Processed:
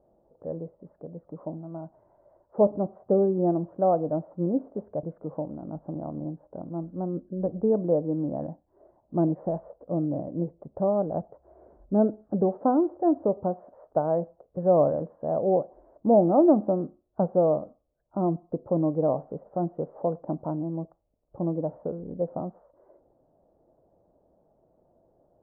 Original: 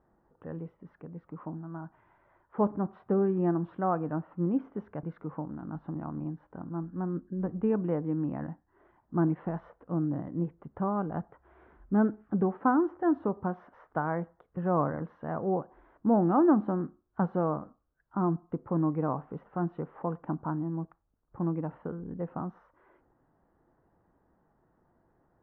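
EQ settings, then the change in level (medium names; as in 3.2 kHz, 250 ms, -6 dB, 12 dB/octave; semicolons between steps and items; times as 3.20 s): resonant low-pass 600 Hz, resonance Q 4.9; 0.0 dB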